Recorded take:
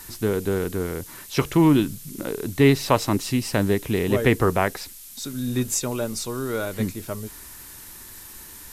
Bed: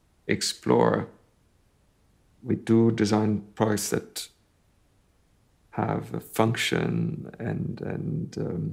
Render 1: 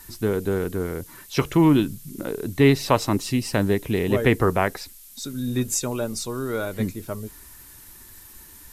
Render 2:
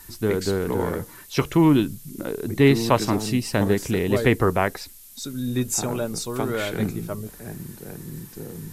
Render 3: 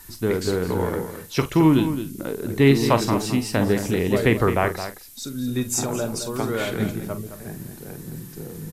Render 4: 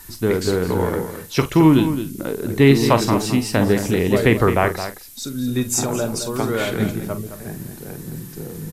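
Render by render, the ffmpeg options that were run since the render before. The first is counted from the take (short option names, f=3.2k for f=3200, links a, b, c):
-af "afftdn=nr=6:nf=-42"
-filter_complex "[1:a]volume=-6.5dB[a];[0:a][a]amix=inputs=2:normalize=0"
-filter_complex "[0:a]asplit=2[a][b];[b]adelay=44,volume=-11.5dB[c];[a][c]amix=inputs=2:normalize=0,asplit=2[d][e];[e]adelay=215.7,volume=-10dB,highshelf=f=4k:g=-4.85[f];[d][f]amix=inputs=2:normalize=0"
-af "volume=3.5dB,alimiter=limit=-1dB:level=0:latency=1"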